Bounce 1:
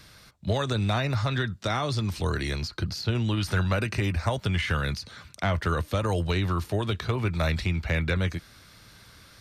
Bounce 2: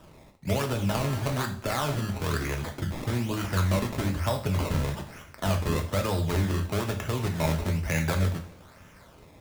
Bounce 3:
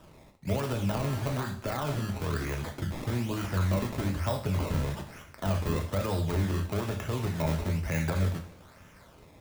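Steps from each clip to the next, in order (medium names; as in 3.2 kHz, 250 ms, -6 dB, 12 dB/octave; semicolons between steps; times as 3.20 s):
crackle 450 per s -51 dBFS; decimation with a swept rate 20×, swing 100% 1.1 Hz; two-slope reverb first 0.4 s, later 1.9 s, from -21 dB, DRR 3.5 dB; trim -2 dB
de-esser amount 65%; trim -2 dB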